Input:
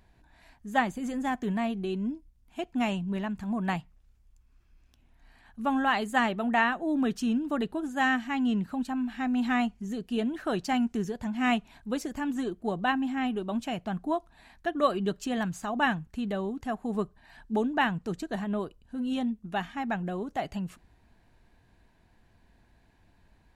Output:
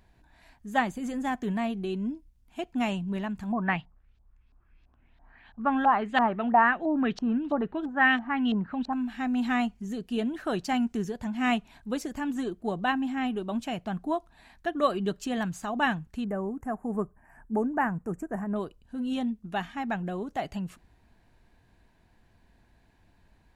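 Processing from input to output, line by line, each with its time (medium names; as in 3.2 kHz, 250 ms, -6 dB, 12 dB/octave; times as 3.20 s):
3.52–8.93 s: LFO low-pass saw up 3 Hz 710–4300 Hz
16.24–18.56 s: Butterworth band-stop 3.8 kHz, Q 0.61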